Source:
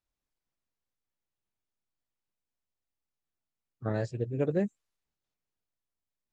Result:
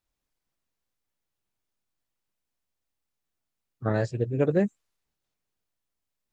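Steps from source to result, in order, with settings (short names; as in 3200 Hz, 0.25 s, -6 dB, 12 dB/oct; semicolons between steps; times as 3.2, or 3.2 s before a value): dynamic EQ 1300 Hz, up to +3 dB, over -45 dBFS, Q 1.1; gain +5 dB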